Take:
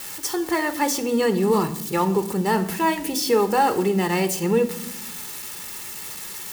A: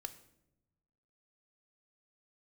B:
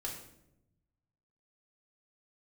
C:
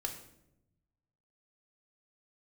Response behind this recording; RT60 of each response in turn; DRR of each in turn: A; 0.90, 0.85, 0.85 seconds; 9.0, −2.5, 2.5 decibels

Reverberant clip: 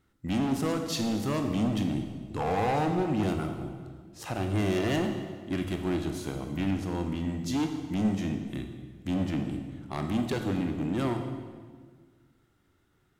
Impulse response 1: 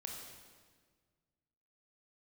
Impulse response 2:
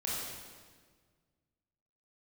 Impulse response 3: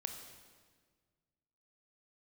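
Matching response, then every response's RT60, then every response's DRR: 3; 1.6, 1.6, 1.6 seconds; 0.0, −6.5, 5.0 decibels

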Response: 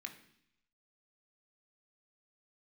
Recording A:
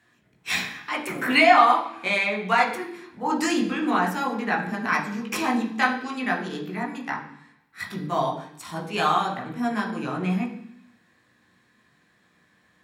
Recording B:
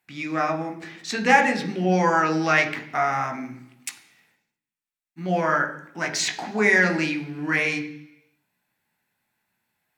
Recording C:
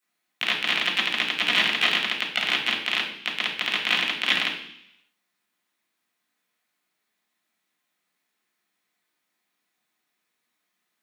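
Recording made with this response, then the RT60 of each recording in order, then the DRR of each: B; 0.70, 0.70, 0.70 seconds; −1.0, 4.0, −9.5 decibels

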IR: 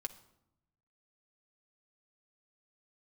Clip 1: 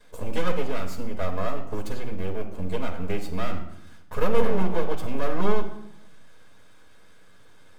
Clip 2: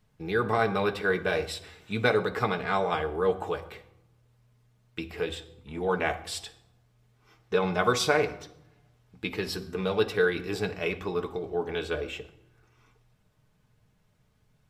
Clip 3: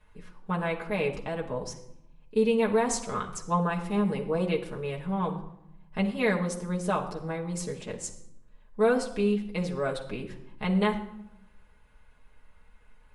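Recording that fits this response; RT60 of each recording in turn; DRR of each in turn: 2; 0.80, 0.80, 0.80 seconds; −11.5, 4.5, −2.0 decibels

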